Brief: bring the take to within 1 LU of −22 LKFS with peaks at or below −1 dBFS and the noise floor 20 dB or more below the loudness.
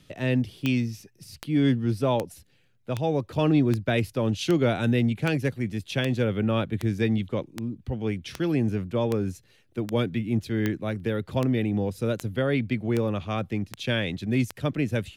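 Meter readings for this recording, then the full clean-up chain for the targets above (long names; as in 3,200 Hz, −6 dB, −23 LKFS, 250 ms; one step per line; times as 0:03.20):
number of clicks 19; integrated loudness −26.5 LKFS; sample peak −11.0 dBFS; target loudness −22.0 LKFS
→ click removal
level +4.5 dB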